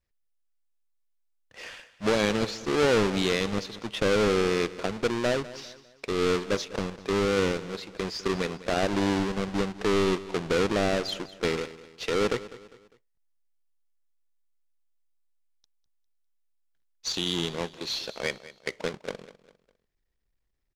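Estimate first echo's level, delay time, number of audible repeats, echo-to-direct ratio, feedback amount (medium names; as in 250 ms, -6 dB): -17.0 dB, 201 ms, 3, -16.5 dB, 39%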